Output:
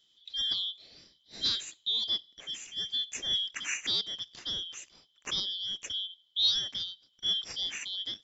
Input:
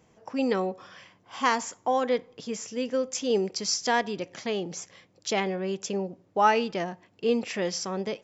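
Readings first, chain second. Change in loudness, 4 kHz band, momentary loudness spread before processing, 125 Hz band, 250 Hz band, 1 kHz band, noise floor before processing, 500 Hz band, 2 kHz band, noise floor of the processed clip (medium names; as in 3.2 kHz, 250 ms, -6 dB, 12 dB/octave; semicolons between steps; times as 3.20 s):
-3.0 dB, +9.0 dB, 11 LU, -15.0 dB, -24.0 dB, -27.0 dB, -64 dBFS, -29.0 dB, -9.5 dB, -70 dBFS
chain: four frequency bands reordered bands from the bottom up 3412; trim -6 dB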